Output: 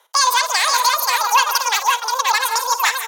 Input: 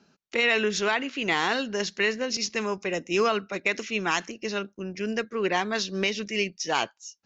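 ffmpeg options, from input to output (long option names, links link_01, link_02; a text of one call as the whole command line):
ffmpeg -i in.wav -af "asetrate=104076,aresample=44100,highpass=frequency=970:width_type=q:width=1.6,aecho=1:1:49|55|143|173|223|529:0.119|0.2|0.168|0.266|0.106|0.631,volume=6.5dB" out.wav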